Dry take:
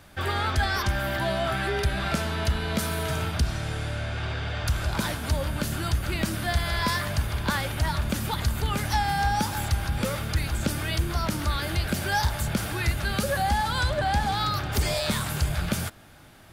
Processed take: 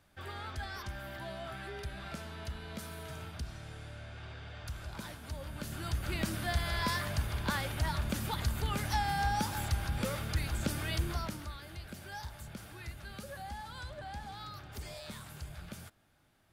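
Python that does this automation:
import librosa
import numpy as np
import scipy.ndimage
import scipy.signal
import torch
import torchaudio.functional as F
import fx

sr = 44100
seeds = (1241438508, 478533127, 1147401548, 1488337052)

y = fx.gain(x, sr, db=fx.line((5.34, -16.0), (6.12, -7.0), (11.1, -7.0), (11.58, -19.0)))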